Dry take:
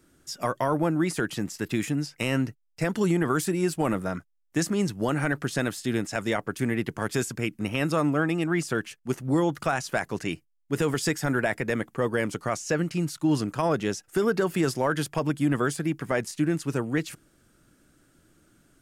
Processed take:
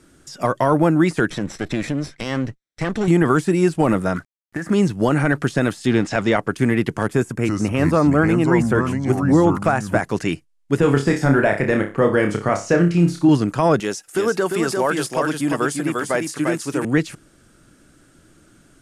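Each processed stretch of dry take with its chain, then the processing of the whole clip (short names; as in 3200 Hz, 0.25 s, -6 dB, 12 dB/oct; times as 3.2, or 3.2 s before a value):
1.3–3.08 minimum comb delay 0.53 ms + compressor 2:1, threshold -29 dBFS + air absorption 64 m
4.16–4.7 resonant high shelf 2500 Hz -12.5 dB, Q 3 + compressor 12:1, threshold -30 dBFS + companded quantiser 6-bit
5.87–6.37 G.711 law mismatch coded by mu + LPF 5000 Hz + upward compressor, threshold -30 dBFS
7.07–10 bell 4400 Hz -12 dB 1.5 oct + echoes that change speed 0.316 s, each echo -4 st, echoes 2, each echo -6 dB
10.8–13.29 high shelf 3000 Hz -9 dB + flutter echo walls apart 5 m, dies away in 0.3 s
13.8–16.85 RIAA curve recording + echo 0.348 s -4.5 dB
whole clip: de-esser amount 100%; LPF 11000 Hz 24 dB/oct; gain +9 dB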